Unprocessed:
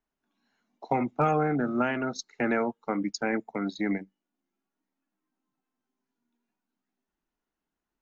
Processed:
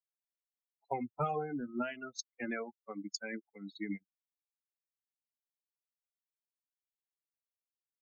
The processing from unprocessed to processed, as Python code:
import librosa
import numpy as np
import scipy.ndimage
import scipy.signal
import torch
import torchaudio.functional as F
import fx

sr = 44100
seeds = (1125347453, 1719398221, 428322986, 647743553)

y = fx.bin_expand(x, sr, power=3.0)
y = fx.high_shelf(y, sr, hz=5700.0, db=9.5)
y = y * librosa.db_to_amplitude(-5.5)